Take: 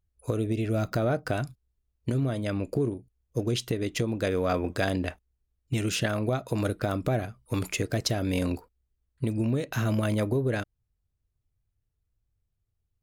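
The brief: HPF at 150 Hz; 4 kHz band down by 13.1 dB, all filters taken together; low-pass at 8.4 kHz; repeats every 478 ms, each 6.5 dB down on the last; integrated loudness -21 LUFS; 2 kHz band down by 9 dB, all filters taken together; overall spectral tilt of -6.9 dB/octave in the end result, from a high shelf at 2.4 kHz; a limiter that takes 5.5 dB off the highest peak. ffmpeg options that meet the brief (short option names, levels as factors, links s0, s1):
-af "highpass=150,lowpass=8400,equalizer=f=2000:t=o:g=-7.5,highshelf=f=2400:g=-6.5,equalizer=f=4000:t=o:g=-8.5,alimiter=limit=0.0891:level=0:latency=1,aecho=1:1:478|956|1434|1912|2390|2868:0.473|0.222|0.105|0.0491|0.0231|0.0109,volume=3.76"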